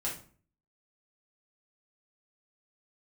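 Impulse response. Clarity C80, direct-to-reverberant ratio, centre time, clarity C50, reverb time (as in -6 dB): 12.5 dB, -5.5 dB, 27 ms, 7.0 dB, 0.45 s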